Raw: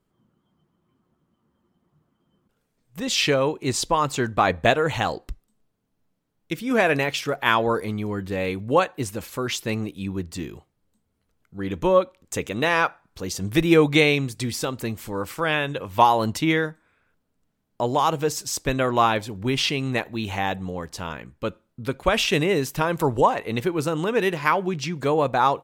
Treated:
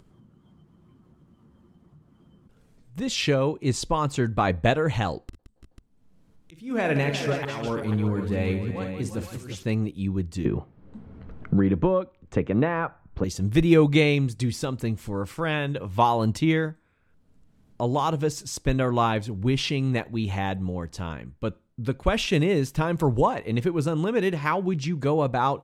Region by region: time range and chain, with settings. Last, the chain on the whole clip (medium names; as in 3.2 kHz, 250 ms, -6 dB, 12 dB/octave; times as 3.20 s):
5.22–9.63 s: slow attack 466 ms + multi-tap echo 44/56/171/339/354/492 ms -13/-9.5/-11/-14/-11.5/-10 dB
10.45–13.24 s: low-pass 1.8 kHz + three bands compressed up and down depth 100%
whole clip: low-pass 11 kHz 12 dB/octave; bass shelf 280 Hz +11.5 dB; upward compressor, threshold -39 dBFS; trim -5.5 dB